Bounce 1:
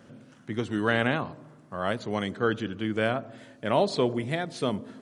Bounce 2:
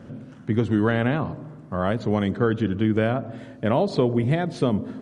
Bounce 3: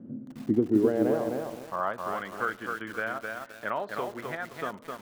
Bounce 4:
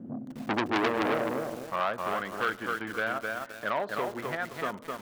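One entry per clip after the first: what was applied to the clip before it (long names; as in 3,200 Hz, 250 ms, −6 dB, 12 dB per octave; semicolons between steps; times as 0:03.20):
downward compressor 2.5 to 1, threshold −27 dBFS, peak gain reduction 6.5 dB; spectral tilt −2.5 dB per octave; level +5.5 dB
transient designer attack +2 dB, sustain −4 dB; band-pass filter sweep 250 Hz → 1,400 Hz, 0:00.37–0:02.13; feedback echo at a low word length 260 ms, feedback 35%, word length 8 bits, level −3.5 dB; level +1.5 dB
in parallel at −7 dB: hard clipping −21 dBFS, distortion −11 dB; on the sum: saturating transformer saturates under 2,300 Hz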